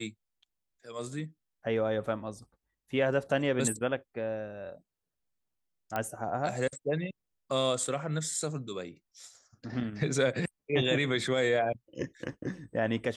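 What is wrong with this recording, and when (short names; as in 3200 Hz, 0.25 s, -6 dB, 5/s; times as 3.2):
5.96 pop -18 dBFS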